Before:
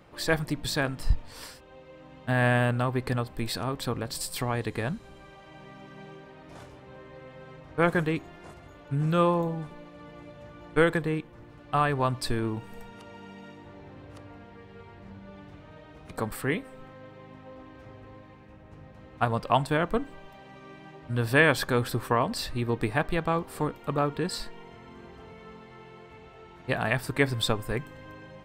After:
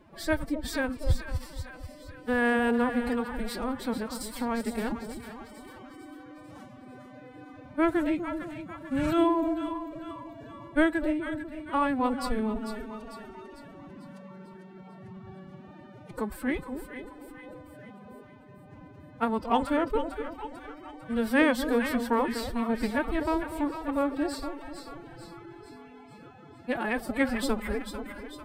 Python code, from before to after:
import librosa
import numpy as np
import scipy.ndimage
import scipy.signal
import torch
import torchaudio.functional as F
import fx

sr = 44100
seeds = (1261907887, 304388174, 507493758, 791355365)

p1 = fx.high_shelf(x, sr, hz=5700.0, db=6.5)
p2 = p1 + fx.echo_split(p1, sr, split_hz=740.0, low_ms=246, high_ms=447, feedback_pct=52, wet_db=-8.0, dry=0)
p3 = fx.pitch_keep_formants(p2, sr, semitones=11.5)
y = fx.high_shelf(p3, sr, hz=2000.0, db=-9.5)